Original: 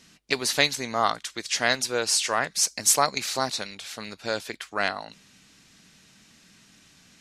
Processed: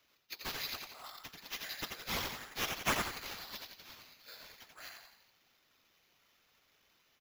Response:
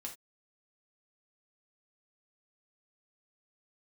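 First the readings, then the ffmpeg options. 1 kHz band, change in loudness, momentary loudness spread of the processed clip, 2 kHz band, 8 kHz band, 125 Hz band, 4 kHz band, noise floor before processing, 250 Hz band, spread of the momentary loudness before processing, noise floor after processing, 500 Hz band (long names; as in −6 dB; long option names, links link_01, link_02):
−15.5 dB, −15.0 dB, 18 LU, −13.5 dB, −21.0 dB, −10.0 dB, −14.0 dB, −57 dBFS, −13.0 dB, 14 LU, −73 dBFS, −19.0 dB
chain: -filter_complex "[0:a]aderivative,asplit=7[link_01][link_02][link_03][link_04][link_05][link_06][link_07];[link_02]adelay=87,afreqshift=33,volume=-4dB[link_08];[link_03]adelay=174,afreqshift=66,volume=-10.6dB[link_09];[link_04]adelay=261,afreqshift=99,volume=-17.1dB[link_10];[link_05]adelay=348,afreqshift=132,volume=-23.7dB[link_11];[link_06]adelay=435,afreqshift=165,volume=-30.2dB[link_12];[link_07]adelay=522,afreqshift=198,volume=-36.8dB[link_13];[link_01][link_08][link_09][link_10][link_11][link_12][link_13]amix=inputs=7:normalize=0,afftfilt=real='hypot(re,im)*cos(2*PI*random(0))':imag='hypot(re,im)*sin(2*PI*random(1))':win_size=512:overlap=0.75,acrusher=samples=5:mix=1:aa=0.000001,volume=-6.5dB"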